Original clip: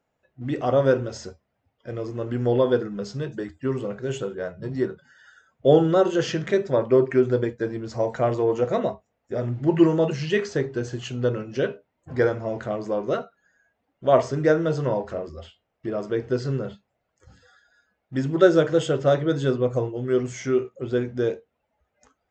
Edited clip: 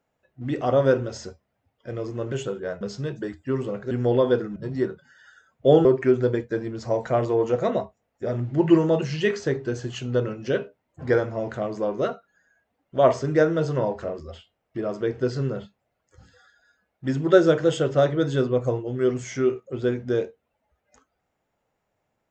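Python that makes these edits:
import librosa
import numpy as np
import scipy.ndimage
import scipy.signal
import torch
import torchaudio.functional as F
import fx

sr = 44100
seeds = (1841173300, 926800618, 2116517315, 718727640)

y = fx.edit(x, sr, fx.swap(start_s=2.32, length_s=0.65, other_s=4.07, other_length_s=0.49),
    fx.cut(start_s=5.85, length_s=1.09), tone=tone)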